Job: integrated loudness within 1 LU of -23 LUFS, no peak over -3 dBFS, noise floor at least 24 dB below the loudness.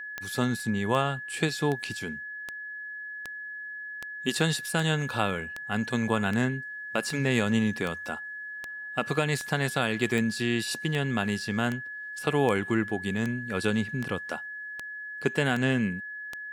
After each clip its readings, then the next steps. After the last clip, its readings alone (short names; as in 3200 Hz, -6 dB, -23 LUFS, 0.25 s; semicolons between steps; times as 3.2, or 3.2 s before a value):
clicks 22; steady tone 1700 Hz; tone level -36 dBFS; loudness -29.0 LUFS; peak -10.5 dBFS; loudness target -23.0 LUFS
-> de-click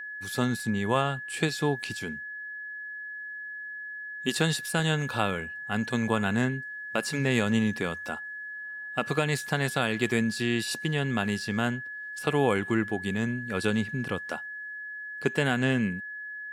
clicks 0; steady tone 1700 Hz; tone level -36 dBFS
-> notch 1700 Hz, Q 30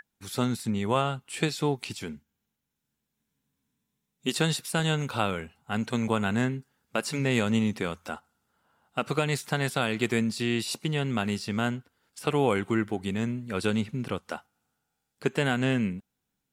steady tone none; loudness -29.0 LUFS; peak -10.5 dBFS; loudness target -23.0 LUFS
-> gain +6 dB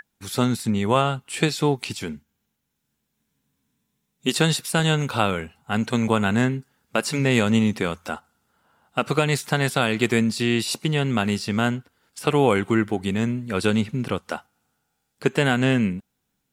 loudness -23.0 LUFS; peak -4.5 dBFS; noise floor -76 dBFS